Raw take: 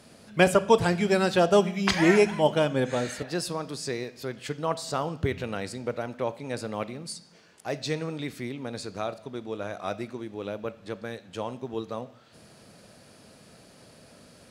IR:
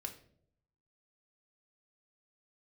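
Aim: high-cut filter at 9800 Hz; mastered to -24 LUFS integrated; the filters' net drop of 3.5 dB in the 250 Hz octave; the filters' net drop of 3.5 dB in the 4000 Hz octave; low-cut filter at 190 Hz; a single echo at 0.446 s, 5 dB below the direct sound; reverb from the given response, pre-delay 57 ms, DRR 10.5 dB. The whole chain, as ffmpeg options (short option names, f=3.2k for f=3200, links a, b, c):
-filter_complex "[0:a]highpass=190,lowpass=9.8k,equalizer=f=250:t=o:g=-3,equalizer=f=4k:t=o:g=-4.5,aecho=1:1:446:0.562,asplit=2[a][b];[1:a]atrim=start_sample=2205,adelay=57[c];[b][c]afir=irnorm=-1:irlink=0,volume=-8dB[d];[a][d]amix=inputs=2:normalize=0,volume=4dB"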